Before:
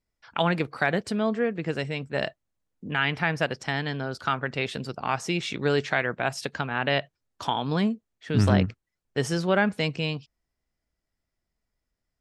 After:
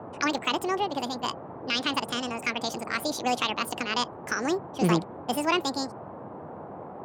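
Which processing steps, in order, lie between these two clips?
band noise 53–540 Hz -39 dBFS; speed mistake 45 rpm record played at 78 rpm; gain -2 dB

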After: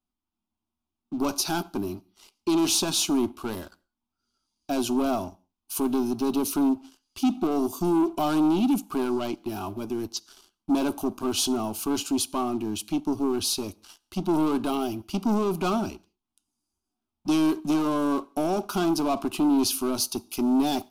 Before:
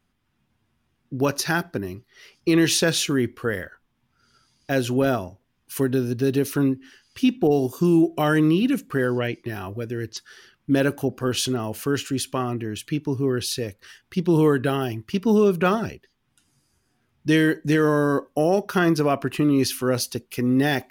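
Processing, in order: sample leveller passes 3; downsampling 32000 Hz; fixed phaser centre 490 Hz, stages 6; on a send: reverb, pre-delay 3 ms, DRR 21.5 dB; on the sum: gain -7.5 dB

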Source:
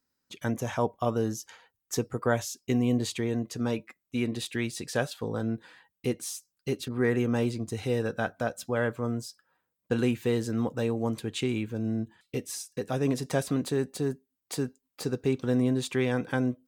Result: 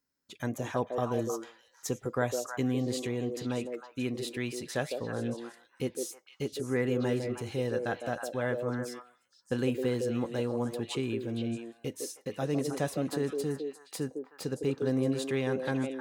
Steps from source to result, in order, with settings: delay with a stepping band-pass 0.163 s, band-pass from 420 Hz, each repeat 1.4 oct, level -1 dB; speed mistake 24 fps film run at 25 fps; gain -4 dB

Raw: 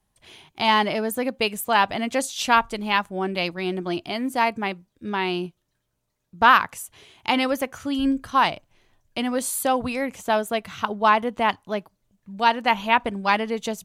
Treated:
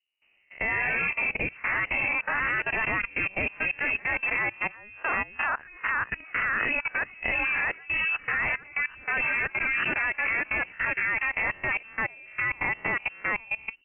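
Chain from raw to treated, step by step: spectral swells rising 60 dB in 0.43 s; low-pass opened by the level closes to 730 Hz, open at -16 dBFS; sample leveller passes 1; echoes that change speed 0.167 s, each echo +2 st, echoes 3; level quantiser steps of 20 dB; inverted band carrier 2900 Hz; gain -6.5 dB

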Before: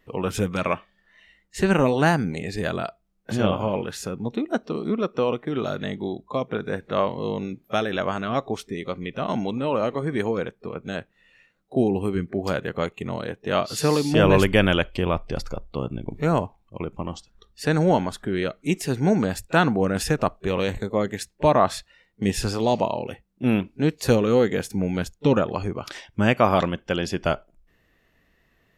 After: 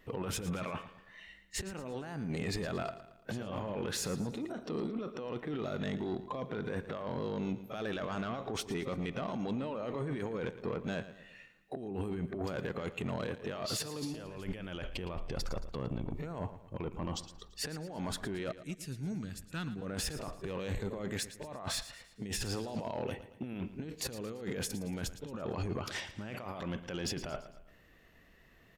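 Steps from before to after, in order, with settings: 18.52–19.82 passive tone stack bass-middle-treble 6-0-2; negative-ratio compressor -31 dBFS, ratio -1; limiter -19 dBFS, peak gain reduction 9 dB; soft clip -23.5 dBFS, distortion -17 dB; on a send: feedback echo 0.113 s, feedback 46%, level -14 dB; on the sum: gain -5 dB

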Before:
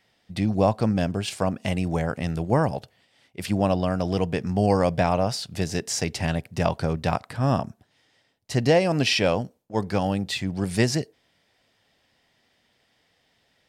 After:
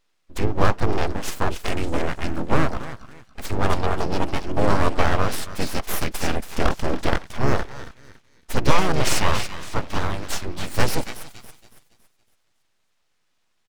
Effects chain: spectral noise reduction 9 dB; on a send: thinning echo 0.279 s, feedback 41%, high-pass 1000 Hz, level -9 dB; on the sum: full-wave rectifier; harmoniser -12 st -6 dB, -3 st -3 dB; gain +2 dB

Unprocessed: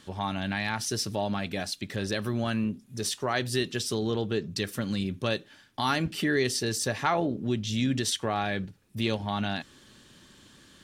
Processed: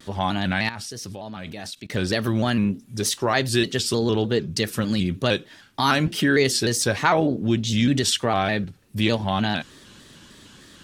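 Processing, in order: 0.69–1.95 level quantiser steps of 21 dB; shaped vibrato square 3.3 Hz, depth 100 cents; gain +7 dB

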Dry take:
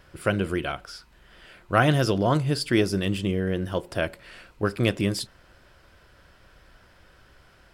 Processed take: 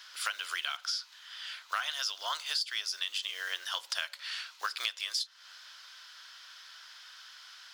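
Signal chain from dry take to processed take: block floating point 7-bit; HPF 1100 Hz 24 dB/oct; band shelf 4600 Hz +10.5 dB 1.3 oct; in parallel at -10 dB: soft clip -17 dBFS, distortion -13 dB; on the sum: compressor 12:1, threshold -32 dBFS, peak gain reduction 18 dB; gain +2 dB

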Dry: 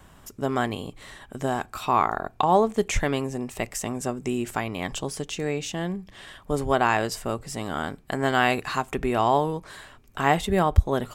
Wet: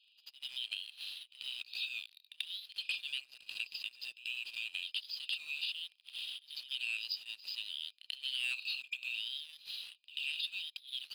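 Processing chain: FFT band-pass 2400–5100 Hz; sample leveller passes 2; compressor 2.5:1, threshold -40 dBFS, peak gain reduction 11 dB; pre-echo 88 ms -15 dB; gain +1 dB

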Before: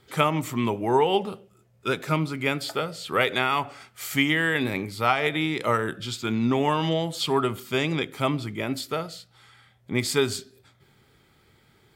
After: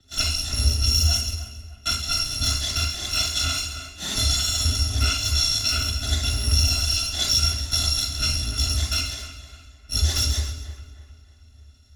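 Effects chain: FFT order left unsorted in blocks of 256 samples; LPF 8000 Hz 12 dB/oct; low shelf 99 Hz +10.5 dB; compressor 6:1, threshold -34 dBFS, peak gain reduction 14.5 dB; split-band echo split 2800 Hz, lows 0.306 s, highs 0.135 s, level -9 dB; reverb RT60 0.45 s, pre-delay 31 ms, DRR 1.5 dB; three-band expander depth 40%; gain +3 dB

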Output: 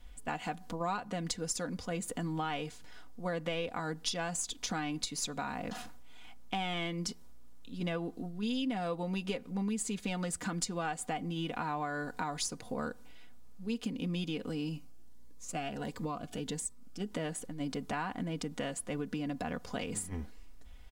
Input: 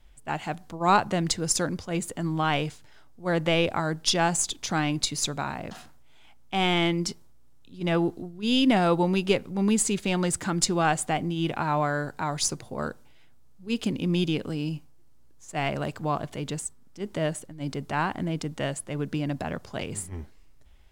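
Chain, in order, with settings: comb 4.1 ms, depth 61%; compressor 5:1, threshold -35 dBFS, peak gain reduction 19.5 dB; 14.76–17.12 cascading phaser rising 1.5 Hz; gain +1 dB

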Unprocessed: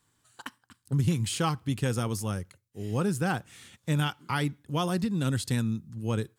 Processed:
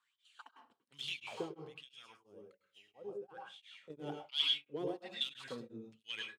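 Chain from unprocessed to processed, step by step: HPF 170 Hz 6 dB/oct; resonant high shelf 2300 Hz +8 dB, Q 1.5; 1.63–3.9 compressor 4:1, threshold -43 dBFS, peak gain reduction 16.5 dB; wavefolder -20.5 dBFS; wah 1.2 Hz 390–3400 Hz, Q 7.3; reverb RT60 0.35 s, pre-delay 98 ms, DRR 1.5 dB; beating tremolo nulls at 2.9 Hz; gain +5 dB

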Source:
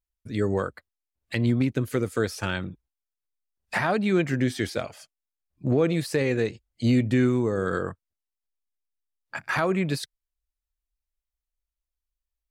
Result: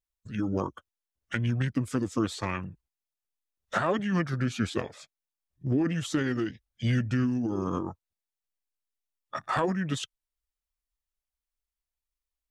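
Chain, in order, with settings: formant shift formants -5 st; harmonic-percussive split harmonic -5 dB

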